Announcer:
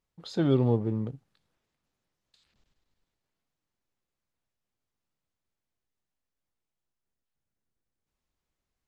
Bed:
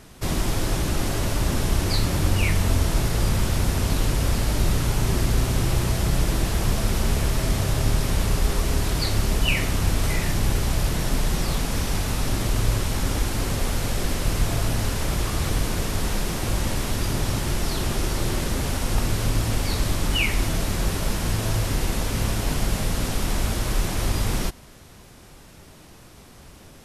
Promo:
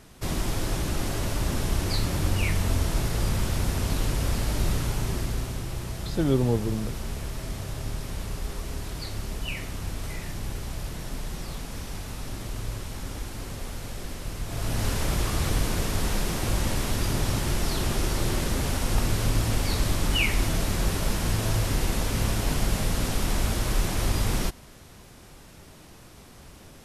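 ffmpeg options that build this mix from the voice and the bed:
-filter_complex "[0:a]adelay=5800,volume=1.06[s0];[1:a]volume=1.88,afade=t=out:st=4.72:d=0.92:silence=0.446684,afade=t=in:st=14.46:d=0.43:silence=0.334965[s1];[s0][s1]amix=inputs=2:normalize=0"

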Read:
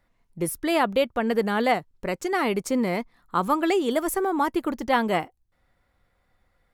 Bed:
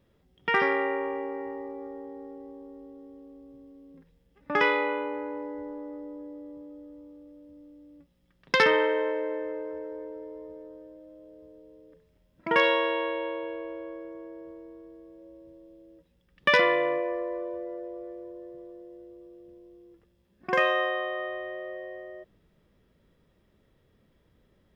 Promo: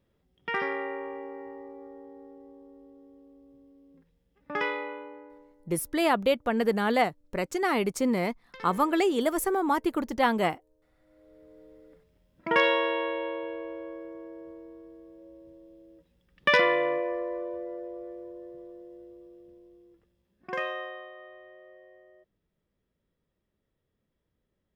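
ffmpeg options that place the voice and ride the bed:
-filter_complex "[0:a]adelay=5300,volume=0.794[s0];[1:a]volume=8.41,afade=t=out:st=4.59:d=0.96:silence=0.112202,afade=t=in:st=10.99:d=0.66:silence=0.0595662,afade=t=out:st=19.03:d=2.11:silence=0.199526[s1];[s0][s1]amix=inputs=2:normalize=0"

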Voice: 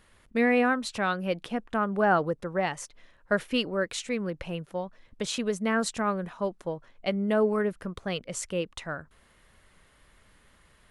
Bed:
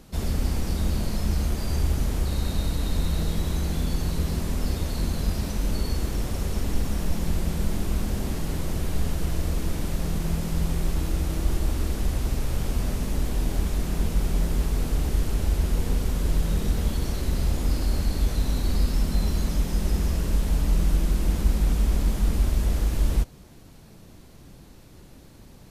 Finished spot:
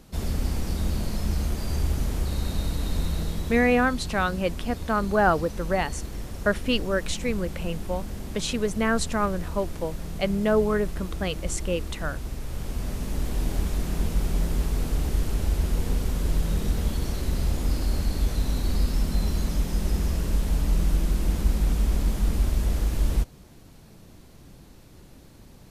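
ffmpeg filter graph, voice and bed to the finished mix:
-filter_complex "[0:a]adelay=3150,volume=1.33[s0];[1:a]volume=1.78,afade=t=out:st=3.02:d=0.8:silence=0.501187,afade=t=in:st=12.4:d=1.05:silence=0.473151[s1];[s0][s1]amix=inputs=2:normalize=0"

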